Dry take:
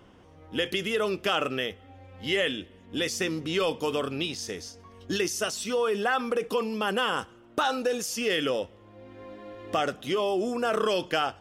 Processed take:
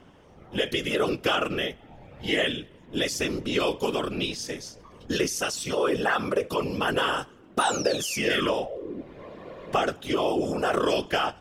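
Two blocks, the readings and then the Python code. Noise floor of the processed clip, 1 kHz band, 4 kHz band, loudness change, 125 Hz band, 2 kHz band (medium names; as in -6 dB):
-52 dBFS, +1.5 dB, +1.5 dB, +1.5 dB, +4.0 dB, +2.0 dB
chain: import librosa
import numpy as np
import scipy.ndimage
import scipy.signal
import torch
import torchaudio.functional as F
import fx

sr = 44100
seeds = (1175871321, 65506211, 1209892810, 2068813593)

y = fx.spec_paint(x, sr, seeds[0], shape='fall', start_s=7.59, length_s=1.43, low_hz=260.0, high_hz=10000.0, level_db=-37.0)
y = fx.whisperise(y, sr, seeds[1])
y = y * 10.0 ** (1.5 / 20.0)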